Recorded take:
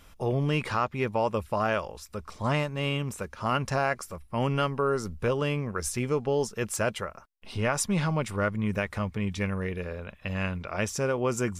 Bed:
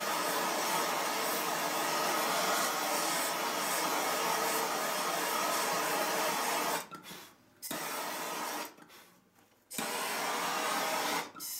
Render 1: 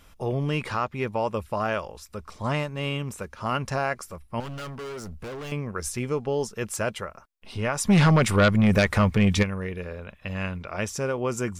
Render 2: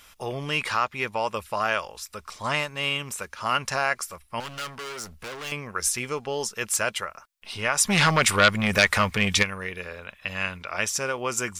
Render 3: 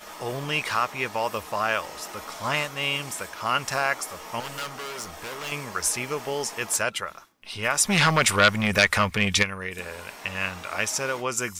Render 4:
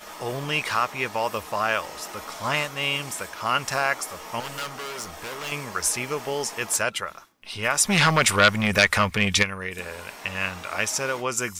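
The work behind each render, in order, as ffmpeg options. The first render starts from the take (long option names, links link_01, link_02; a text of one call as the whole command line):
ffmpeg -i in.wav -filter_complex "[0:a]asettb=1/sr,asplit=3[link_01][link_02][link_03];[link_01]atrim=end=4.404[link_04];[link_02]atrim=start=4.4:end=5.52,asetpts=PTS-STARTPTS,afade=type=in:duration=0.004:curve=qsin,afade=type=out:start_time=1.116:duration=0.004:curve=qsin,volume=34dB,asoftclip=hard,volume=-34dB[link_05];[link_03]atrim=start=5.516[link_06];[link_04][link_05]acrossfade=duration=0.004:curve1=hsin:curve2=qsin[link_07];[link_07][link_06]acrossfade=duration=0.004:curve1=qsin:curve2=hsin,asplit=3[link_08][link_09][link_10];[link_08]afade=type=out:start_time=7.85:duration=0.02[link_11];[link_09]aeval=exprs='0.224*sin(PI/2*2.51*val(0)/0.224)':channel_layout=same,afade=type=in:start_time=7.85:duration=0.02,afade=type=out:start_time=9.42:duration=0.02[link_12];[link_10]afade=type=in:start_time=9.42:duration=0.02[link_13];[link_11][link_12][link_13]amix=inputs=3:normalize=0" out.wav
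ffmpeg -i in.wav -af "tiltshelf=frequency=720:gain=-8.5" out.wav
ffmpeg -i in.wav -i bed.wav -filter_complex "[1:a]volume=-8.5dB[link_01];[0:a][link_01]amix=inputs=2:normalize=0" out.wav
ffmpeg -i in.wav -af "volume=1dB" out.wav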